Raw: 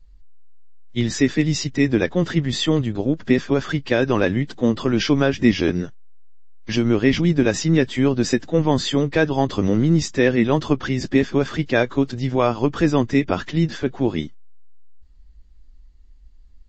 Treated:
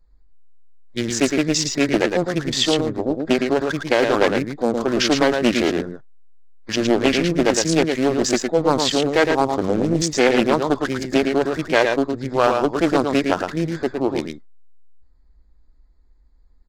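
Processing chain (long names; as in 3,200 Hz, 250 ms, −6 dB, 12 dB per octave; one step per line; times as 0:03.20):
adaptive Wiener filter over 15 samples
bass and treble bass −11 dB, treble +7 dB
single-tap delay 111 ms −5 dB
highs frequency-modulated by the lows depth 0.43 ms
level +3 dB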